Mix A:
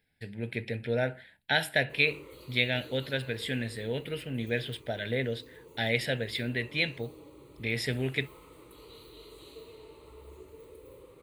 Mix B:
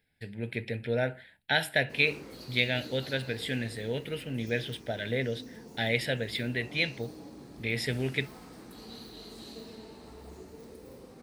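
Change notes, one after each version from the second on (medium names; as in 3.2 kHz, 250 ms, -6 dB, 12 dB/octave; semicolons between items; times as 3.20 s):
background: remove static phaser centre 1.1 kHz, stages 8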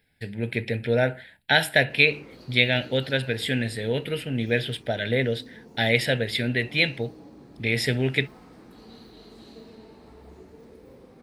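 speech +7.0 dB; background: add treble shelf 4.4 kHz -12 dB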